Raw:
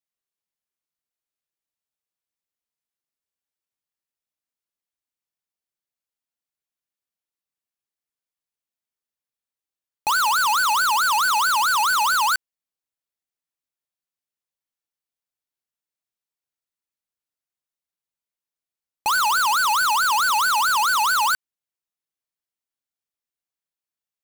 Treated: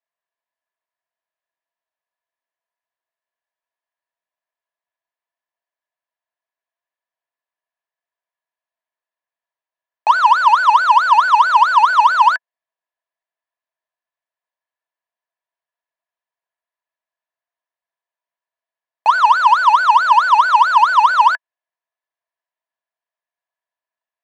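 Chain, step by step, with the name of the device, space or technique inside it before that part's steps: tin-can telephone (BPF 530–2900 Hz; small resonant body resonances 670/970/1700 Hz, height 14 dB, ringing for 30 ms); gain +2.5 dB

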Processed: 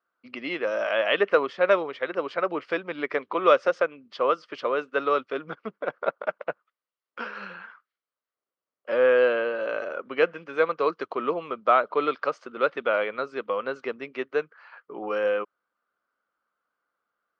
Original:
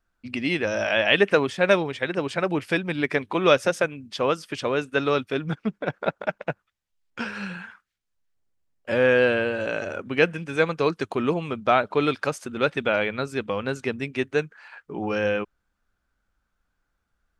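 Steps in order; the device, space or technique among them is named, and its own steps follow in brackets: phone earpiece (speaker cabinet 450–4000 Hz, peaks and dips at 510 Hz +3 dB, 820 Hz -5 dB, 1200 Hz +6 dB, 1700 Hz -5 dB, 2500 Hz -7 dB, 3600 Hz -8 dB)

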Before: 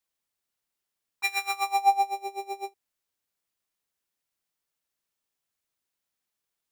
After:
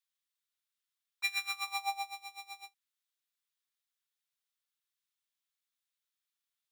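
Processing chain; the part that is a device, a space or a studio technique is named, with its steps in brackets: headphones lying on a table (HPF 1100 Hz 24 dB/oct; bell 3600 Hz +6 dB 0.43 oct); 1.67–2.61 comb 6 ms, depth 88%; gain -6 dB

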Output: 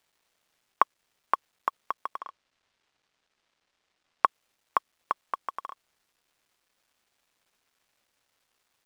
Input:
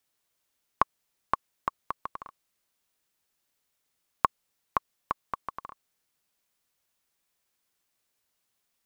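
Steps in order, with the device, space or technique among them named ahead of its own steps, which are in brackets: phone line with mismatched companding (BPF 400–3600 Hz; G.711 law mismatch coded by mu); 2.19–4.25 LPF 5700 Hz 12 dB/oct; gain +2 dB

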